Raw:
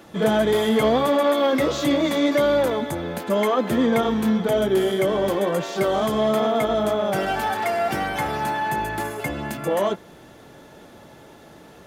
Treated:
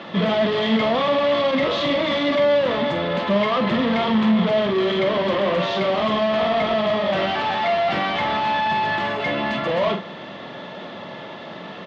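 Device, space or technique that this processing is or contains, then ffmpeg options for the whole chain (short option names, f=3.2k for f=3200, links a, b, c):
overdrive pedal into a guitar cabinet: -filter_complex "[0:a]asplit=2[a][b];[b]highpass=f=720:p=1,volume=27dB,asoftclip=type=tanh:threshold=-9.5dB[c];[a][c]amix=inputs=2:normalize=0,lowpass=f=5.3k:p=1,volume=-6dB,highpass=97,equalizer=f=190:t=q:w=4:g=6,equalizer=f=310:t=q:w=4:g=-6,equalizer=f=440:t=q:w=4:g=-7,equalizer=f=810:t=q:w=4:g=-7,equalizer=f=1.5k:t=q:w=4:g=-10,equalizer=f=2.4k:t=q:w=4:g=-5,lowpass=f=3.6k:w=0.5412,lowpass=f=3.6k:w=1.3066,asplit=2[d][e];[e]adelay=45,volume=-7.5dB[f];[d][f]amix=inputs=2:normalize=0,volume=-2dB"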